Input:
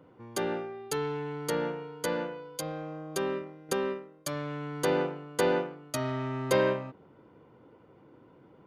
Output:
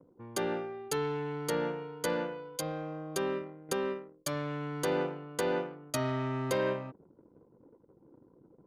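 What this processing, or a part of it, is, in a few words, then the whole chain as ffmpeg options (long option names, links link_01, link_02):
limiter into clipper: -af "anlmdn=0.00158,alimiter=limit=-19.5dB:level=0:latency=1:release=449,asoftclip=type=hard:threshold=-21.5dB"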